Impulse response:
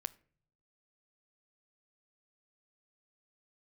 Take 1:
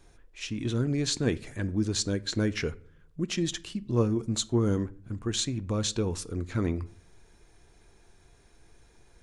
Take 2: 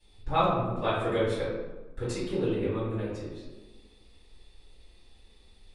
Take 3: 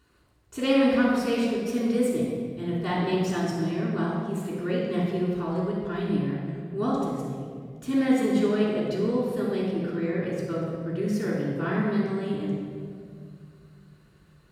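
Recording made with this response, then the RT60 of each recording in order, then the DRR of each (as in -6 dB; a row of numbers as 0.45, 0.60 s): 1; not exponential, 1.2 s, 2.2 s; 15.0, -14.5, -6.5 dB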